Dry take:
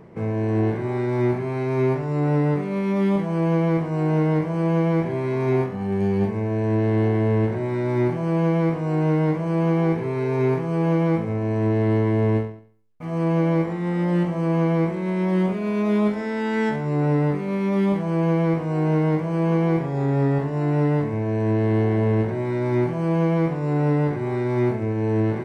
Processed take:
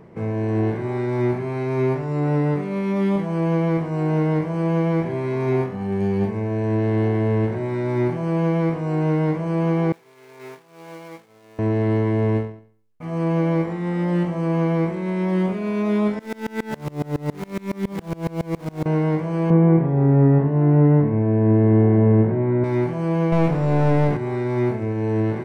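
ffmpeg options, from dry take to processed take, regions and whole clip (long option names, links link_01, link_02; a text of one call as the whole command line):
ffmpeg -i in.wav -filter_complex "[0:a]asettb=1/sr,asplit=3[link_01][link_02][link_03];[link_01]atrim=end=9.924[link_04];[link_02]atrim=start=9.92:end=11.59,asetpts=PTS-STARTPTS,afade=type=in:duration=0.004:curve=qsin,afade=type=out:start_time=1.666:duration=0.004:curve=qsin,aeval=exprs='val(0)+0.5*0.0355*sgn(val(0))':channel_layout=same,agate=range=-33dB:threshold=-12dB:ratio=3:release=100:detection=peak,highpass=frequency=1200:poles=1[link_05];[link_03]atrim=start=11.586[link_06];[link_04][link_05]acrossfade=duration=0.004:curve1=hsin:curve2=qsin[link_07];[link_07][link_06]acrossfade=duration=0.004:curve1=qsin:curve2=hsin,asettb=1/sr,asplit=3[link_08][link_09][link_10];[link_08]atrim=end=16.194[link_11];[link_09]atrim=start=16.19:end=18.86,asetpts=PTS-STARTPTS,afade=type=in:duration=0.004:curve=qsin,afade=type=out:start_time=2.666:duration=0.004:curve=qsin,aeval=exprs='val(0)+0.5*0.0473*sgn(val(0))':channel_layout=same,aeval=exprs='val(0)*pow(10,-27*if(lt(mod(-7.2*n/s,1),2*abs(-7.2)/1000),1-mod(-7.2*n/s,1)/(2*abs(-7.2)/1000),(mod(-7.2*n/s,1)-2*abs(-7.2)/1000)/(1-2*abs(-7.2)/1000))/20)':channel_layout=same[link_12];[link_10]atrim=start=18.856[link_13];[link_11][link_12]acrossfade=duration=0.004:curve1=hsin:curve2=qsin[link_14];[link_14][link_13]acrossfade=duration=0.004:curve1=qsin:curve2=hsin,asettb=1/sr,asplit=3[link_15][link_16][link_17];[link_15]atrim=end=19.504[link_18];[link_16]atrim=start=19.5:end=22.64,asetpts=PTS-STARTPTS,afade=type=in:duration=0.004:curve=qsin,afade=type=out:start_time=3.136:duration=0.004:curve=qsin,acrossover=split=2700[link_19][link_20];[link_20]acompressor=threshold=-57dB:ratio=4:attack=1:release=60[link_21];[link_19][link_21]amix=inputs=2:normalize=0,highpass=160,lowpass=3500,aemphasis=mode=reproduction:type=riaa[link_22];[link_17]atrim=start=22.636[link_23];[link_18][link_22]acrossfade=duration=0.004:curve1=hsin:curve2=qsin[link_24];[link_24][link_23]acrossfade=duration=0.004:curve1=qsin:curve2=hsin,asettb=1/sr,asplit=3[link_25][link_26][link_27];[link_25]atrim=end=23.324[link_28];[link_26]atrim=start=23.32:end=24.17,asetpts=PTS-STARTPTS,afade=type=in:duration=0.004:curve=qsin,afade=type=out:start_time=0.846:duration=0.004:curve=qsin,bass=frequency=250:gain=3,treble=frequency=4000:gain=1,acontrast=26,aeval=exprs='clip(val(0),-1,0.1)':channel_layout=same[link_29];[link_27]atrim=start=24.166[link_30];[link_28][link_29]acrossfade=duration=0.004:curve1=hsin:curve2=qsin[link_31];[link_31][link_30]acrossfade=duration=0.004:curve1=qsin:curve2=hsin" out.wav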